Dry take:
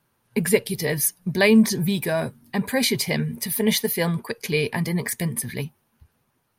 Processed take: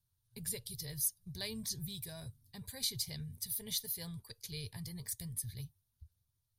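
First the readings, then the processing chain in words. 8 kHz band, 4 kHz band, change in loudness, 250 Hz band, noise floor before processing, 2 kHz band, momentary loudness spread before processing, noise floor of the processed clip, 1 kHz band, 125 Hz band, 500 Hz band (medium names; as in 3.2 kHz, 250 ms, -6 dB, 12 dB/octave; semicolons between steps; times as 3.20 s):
-11.5 dB, -13.0 dB, -17.0 dB, -26.5 dB, -70 dBFS, -28.0 dB, 11 LU, -83 dBFS, -29.0 dB, -17.5 dB, -29.5 dB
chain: FFT filter 100 Hz 0 dB, 220 Hz -28 dB, 2.6 kHz -25 dB, 3.7 kHz -9 dB; trim -2.5 dB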